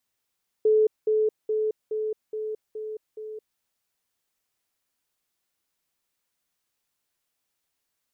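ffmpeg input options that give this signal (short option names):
-f lavfi -i "aevalsrc='pow(10,(-16-3*floor(t/0.42))/20)*sin(2*PI*432*t)*clip(min(mod(t,0.42),0.22-mod(t,0.42))/0.005,0,1)':d=2.94:s=44100"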